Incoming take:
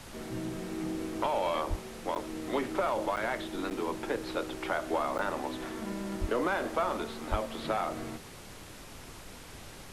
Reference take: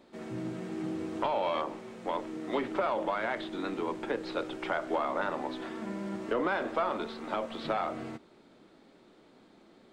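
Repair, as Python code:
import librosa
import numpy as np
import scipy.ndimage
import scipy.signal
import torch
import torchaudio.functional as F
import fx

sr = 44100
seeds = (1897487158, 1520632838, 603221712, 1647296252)

y = fx.highpass(x, sr, hz=140.0, slope=24, at=(1.69, 1.81), fade=0.02)
y = fx.highpass(y, sr, hz=140.0, slope=24, at=(6.2, 6.32), fade=0.02)
y = fx.highpass(y, sr, hz=140.0, slope=24, at=(7.3, 7.42), fade=0.02)
y = fx.fix_interpolate(y, sr, at_s=(2.15, 3.16, 3.7, 5.18), length_ms=8.9)
y = fx.noise_reduce(y, sr, print_start_s=8.2, print_end_s=8.7, reduce_db=12.0)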